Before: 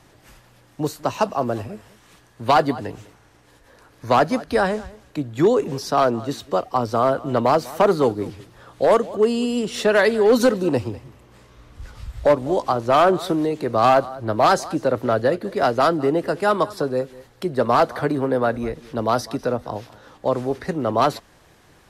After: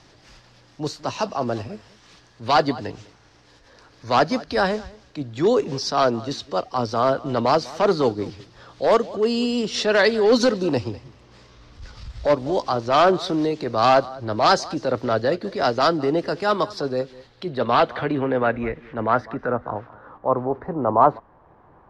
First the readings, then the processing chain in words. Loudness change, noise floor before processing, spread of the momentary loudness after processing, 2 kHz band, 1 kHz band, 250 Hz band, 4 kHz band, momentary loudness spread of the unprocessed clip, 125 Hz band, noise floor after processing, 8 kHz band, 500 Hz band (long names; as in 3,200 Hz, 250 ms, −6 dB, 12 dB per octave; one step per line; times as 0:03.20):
−1.0 dB, −54 dBFS, 13 LU, 0.0 dB, −1.0 dB, −1.5 dB, +3.5 dB, 13 LU, −2.0 dB, −54 dBFS, −1.0 dB, −1.5 dB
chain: transient designer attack −6 dB, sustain −2 dB
low-pass filter sweep 5,100 Hz → 990 Hz, 0:16.92–0:20.47